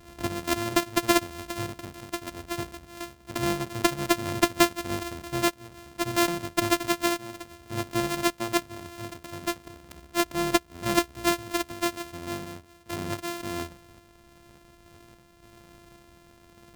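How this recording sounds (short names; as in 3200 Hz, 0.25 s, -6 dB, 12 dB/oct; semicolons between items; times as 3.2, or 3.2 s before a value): a buzz of ramps at a fixed pitch in blocks of 128 samples; random-step tremolo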